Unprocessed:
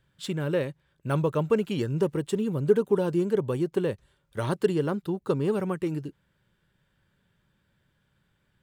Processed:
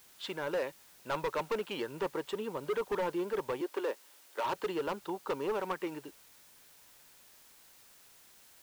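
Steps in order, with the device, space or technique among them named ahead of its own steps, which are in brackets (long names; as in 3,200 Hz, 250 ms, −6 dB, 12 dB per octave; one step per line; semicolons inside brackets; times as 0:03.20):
drive-through speaker (band-pass filter 530–3,800 Hz; parametric band 920 Hz +7 dB 0.46 octaves; hard clipping −28.5 dBFS, distortion −7 dB; white noise bed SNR 22 dB)
0:03.61–0:04.44: Butterworth high-pass 260 Hz 36 dB per octave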